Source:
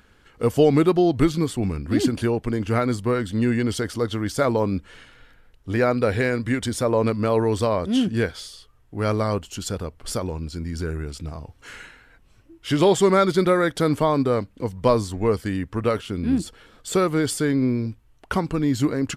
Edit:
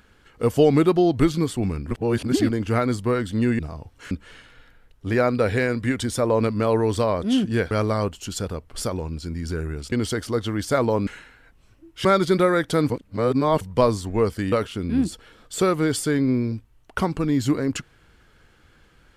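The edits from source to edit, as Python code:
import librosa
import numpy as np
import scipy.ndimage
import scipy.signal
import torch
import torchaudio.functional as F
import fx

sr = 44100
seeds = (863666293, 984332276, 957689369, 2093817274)

y = fx.edit(x, sr, fx.reverse_span(start_s=1.91, length_s=0.58),
    fx.swap(start_s=3.59, length_s=1.15, other_s=11.22, other_length_s=0.52),
    fx.cut(start_s=8.34, length_s=0.67),
    fx.cut(start_s=12.72, length_s=0.4),
    fx.reverse_span(start_s=13.97, length_s=0.71),
    fx.cut(start_s=15.59, length_s=0.27), tone=tone)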